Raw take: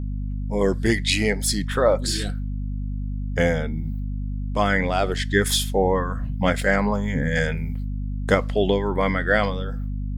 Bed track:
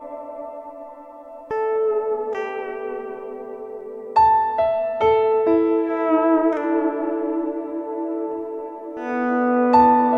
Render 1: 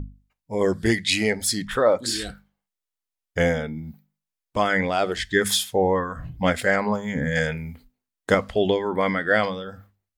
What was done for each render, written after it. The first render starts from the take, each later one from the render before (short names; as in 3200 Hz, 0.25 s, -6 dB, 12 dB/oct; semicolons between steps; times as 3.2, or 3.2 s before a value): notches 50/100/150/200/250 Hz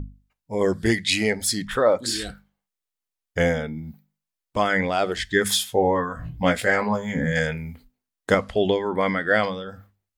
5.67–7.32 doubler 18 ms -6.5 dB; 8.37–9.7 brick-wall FIR low-pass 12000 Hz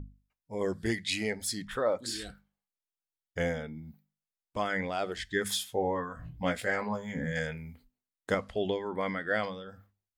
gain -10 dB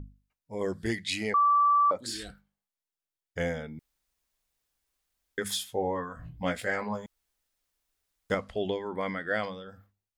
1.34–1.91 bleep 1160 Hz -19 dBFS; 3.79–5.38 room tone; 7.06–8.3 room tone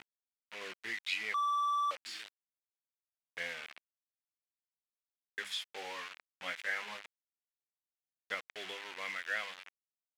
bit-crush 6-bit; band-pass 2400 Hz, Q 1.7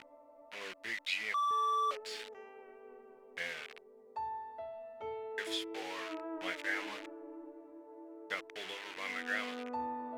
add bed track -25.5 dB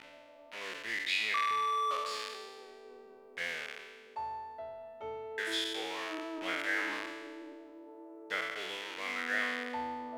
spectral trails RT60 1.42 s